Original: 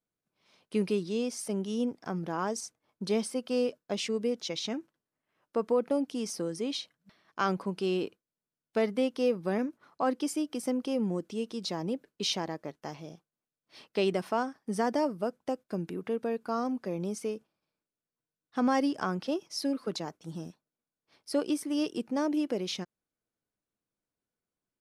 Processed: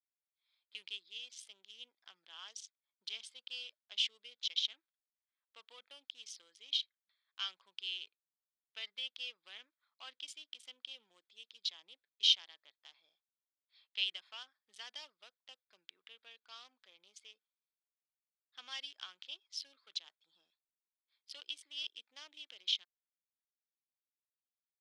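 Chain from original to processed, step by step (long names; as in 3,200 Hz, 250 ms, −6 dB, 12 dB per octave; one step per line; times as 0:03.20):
adaptive Wiener filter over 15 samples
four-pole ladder band-pass 3,400 Hz, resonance 75%
level +8 dB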